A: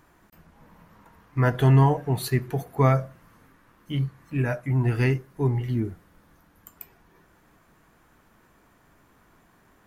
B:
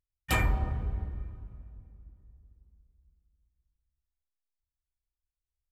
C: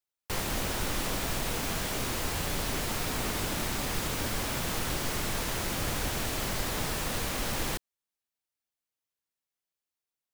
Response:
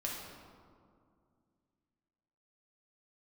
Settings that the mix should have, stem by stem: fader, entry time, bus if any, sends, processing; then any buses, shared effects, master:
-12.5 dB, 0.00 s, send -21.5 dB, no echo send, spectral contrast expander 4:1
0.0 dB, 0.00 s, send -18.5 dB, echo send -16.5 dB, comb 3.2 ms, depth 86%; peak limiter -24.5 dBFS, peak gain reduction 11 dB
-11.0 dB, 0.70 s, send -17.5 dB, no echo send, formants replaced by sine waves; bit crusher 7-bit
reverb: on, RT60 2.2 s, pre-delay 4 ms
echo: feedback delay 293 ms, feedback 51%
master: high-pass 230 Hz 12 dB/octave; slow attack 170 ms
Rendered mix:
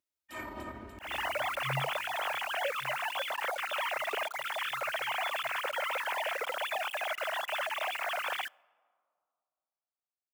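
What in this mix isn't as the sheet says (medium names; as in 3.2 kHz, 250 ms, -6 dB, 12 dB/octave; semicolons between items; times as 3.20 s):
stem C -11.0 dB -> -3.5 dB; reverb return -9.5 dB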